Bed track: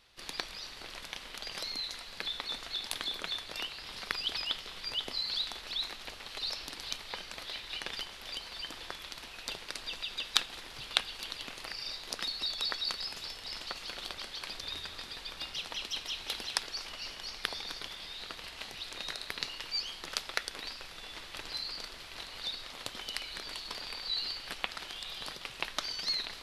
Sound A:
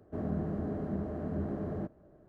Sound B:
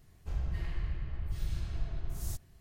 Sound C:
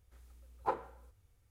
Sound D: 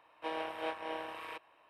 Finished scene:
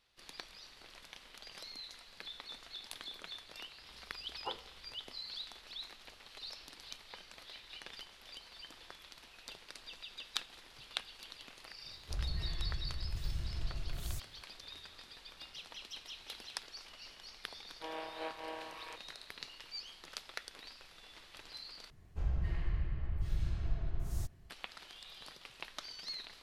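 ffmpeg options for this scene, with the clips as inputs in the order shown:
-filter_complex "[2:a]asplit=2[a][b];[0:a]volume=-10.5dB[c];[4:a]dynaudnorm=f=160:g=3:m=13.5dB[d];[b]aemphasis=mode=reproduction:type=cd[e];[c]asplit=2[f][g];[f]atrim=end=21.904[h];[e]atrim=end=2.6,asetpts=PTS-STARTPTS,volume=-0.5dB[i];[g]atrim=start=24.496[j];[3:a]atrim=end=1.5,asetpts=PTS-STARTPTS,volume=-9dB,afade=t=in:d=0.004:c=hsin,afade=t=out:st=1.496:d=0.004:c=hsin,adelay=3790[k];[a]atrim=end=2.6,asetpts=PTS-STARTPTS,volume=-3.5dB,afade=t=in:d=0.004:c=hsin,afade=t=out:st=2.596:d=0.004:c=hsin,adelay=11830[l];[d]atrim=end=1.69,asetpts=PTS-STARTPTS,volume=-18dB,afade=t=in:d=0.004:c=hsin,afade=t=out:st=1.686:d=0.004:c=hsin,adelay=17580[m];[h][i]acrossfade=d=0.004:c1=hsin:c2=hsin[n];[n][j]acrossfade=d=0.004:c1=hsin:c2=hsin[o];[o][k][l][m]amix=inputs=4:normalize=0"

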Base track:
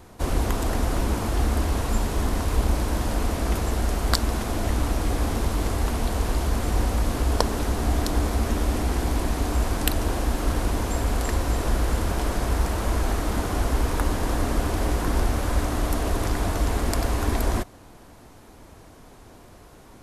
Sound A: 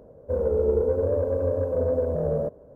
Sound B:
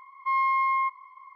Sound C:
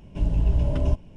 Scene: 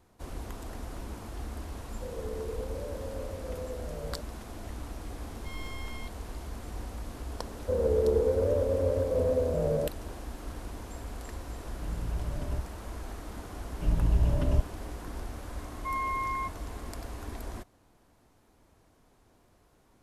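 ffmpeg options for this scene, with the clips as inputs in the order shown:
-filter_complex "[1:a]asplit=2[a][b];[2:a]asplit=2[c][d];[3:a]asplit=2[e][f];[0:a]volume=-16dB[g];[c]aeval=exprs='abs(val(0))':c=same[h];[a]atrim=end=2.75,asetpts=PTS-STARTPTS,volume=-15.5dB,afade=t=in:d=0.004:c=hsin,afade=t=out:st=2.746:d=0.004:c=hsin,adelay=1720[i];[h]atrim=end=1.35,asetpts=PTS-STARTPTS,volume=-16dB,afade=t=in:d=0.004:c=hsin,afade=t=out:st=1.346:d=0.004:c=hsin,adelay=5190[j];[b]atrim=end=2.75,asetpts=PTS-STARTPTS,volume=-3dB,afade=t=in:d=0.004:c=hsin,afade=t=out:st=2.746:d=0.004:c=hsin,adelay=7390[k];[e]atrim=end=1.16,asetpts=PTS-STARTPTS,volume=-12.5dB,afade=t=in:d=0.004:c=hsin,afade=t=out:st=1.156:d=0.004:c=hsin,adelay=11660[l];[f]atrim=end=1.16,asetpts=PTS-STARTPTS,volume=-3.5dB,afade=t=in:d=0.004:c=hsin,afade=t=out:st=1.156:d=0.004:c=hsin,adelay=13660[m];[d]atrim=end=1.35,asetpts=PTS-STARTPTS,volume=-8dB,afade=t=in:d=0.004:c=hsin,afade=t=out:st=1.346:d=0.004:c=hsin,adelay=15590[n];[g][i][j][k][l][m][n]amix=inputs=7:normalize=0"

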